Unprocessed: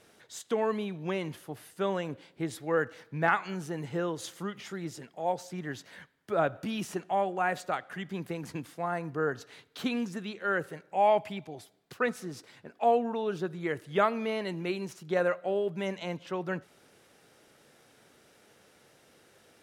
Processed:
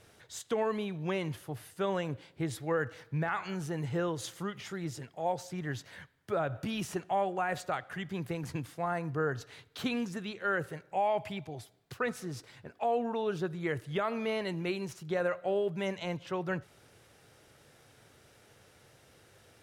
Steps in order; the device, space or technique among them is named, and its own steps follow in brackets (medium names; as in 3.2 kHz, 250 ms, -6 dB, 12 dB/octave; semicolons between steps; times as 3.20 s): car stereo with a boomy subwoofer (resonant low shelf 150 Hz +8 dB, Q 1.5; peak limiter -21.5 dBFS, peak gain reduction 9.5 dB)